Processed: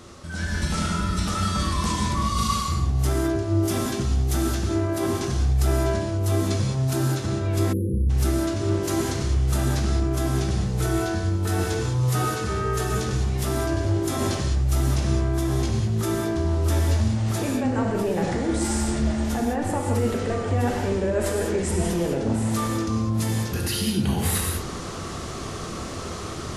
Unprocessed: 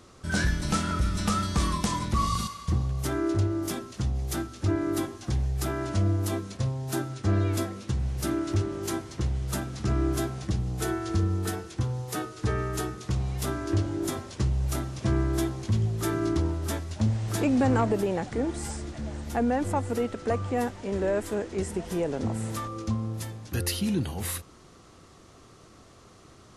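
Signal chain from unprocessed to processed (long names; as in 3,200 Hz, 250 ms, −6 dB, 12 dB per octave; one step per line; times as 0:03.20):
brickwall limiter −27 dBFS, peak gain reduction 11 dB
reversed playback
downward compressor 12 to 1, threshold −41 dBFS, peak gain reduction 11.5 dB
reversed playback
reverb whose tail is shaped and stops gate 230 ms flat, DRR −0.5 dB
automatic gain control gain up to 10 dB
time-frequency box erased 0:07.73–0:08.10, 540–10,000 Hz
level +7 dB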